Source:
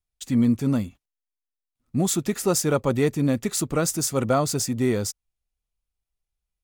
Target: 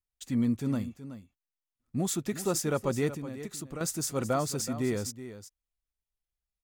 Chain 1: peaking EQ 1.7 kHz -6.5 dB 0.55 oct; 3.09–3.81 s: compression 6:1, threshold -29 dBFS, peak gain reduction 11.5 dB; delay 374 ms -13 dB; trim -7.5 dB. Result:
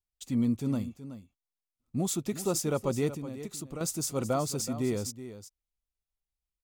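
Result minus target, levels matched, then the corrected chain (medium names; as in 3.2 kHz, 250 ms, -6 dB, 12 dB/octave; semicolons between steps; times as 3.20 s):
2 kHz band -4.5 dB
peaking EQ 1.7 kHz +2 dB 0.55 oct; 3.09–3.81 s: compression 6:1, threshold -29 dBFS, peak gain reduction 11.5 dB; delay 374 ms -13 dB; trim -7.5 dB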